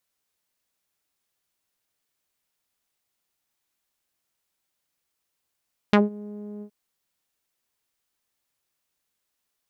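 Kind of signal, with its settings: synth note saw G#3 12 dB/octave, low-pass 380 Hz, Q 1.5, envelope 3.5 oct, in 0.08 s, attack 1.7 ms, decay 0.16 s, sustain -23.5 dB, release 0.08 s, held 0.69 s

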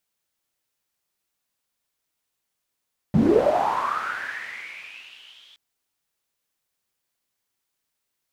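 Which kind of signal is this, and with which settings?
swept filtered noise pink, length 2.42 s bandpass, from 140 Hz, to 3.4 kHz, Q 8.9, linear, gain ramp -38 dB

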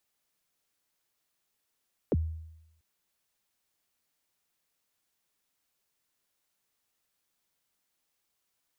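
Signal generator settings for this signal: kick drum length 0.69 s, from 570 Hz, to 80 Hz, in 35 ms, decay 0.87 s, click off, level -21 dB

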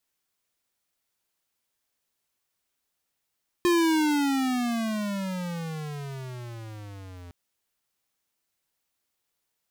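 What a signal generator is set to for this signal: gliding synth tone square, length 3.66 s, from 354 Hz, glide -24.5 st, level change -23 dB, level -20.5 dB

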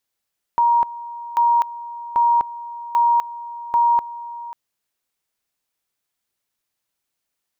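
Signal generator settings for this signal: two-level tone 944 Hz -12.5 dBFS, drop 17 dB, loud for 0.25 s, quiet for 0.54 s, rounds 5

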